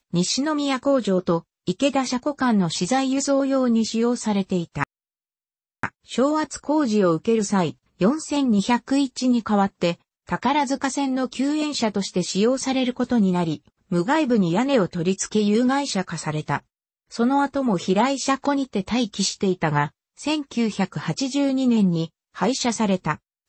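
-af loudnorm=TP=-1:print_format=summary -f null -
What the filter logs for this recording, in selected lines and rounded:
Input Integrated:    -22.5 LUFS
Input True Peak:      -5.9 dBTP
Input LRA:             2.2 LU
Input Threshold:     -32.6 LUFS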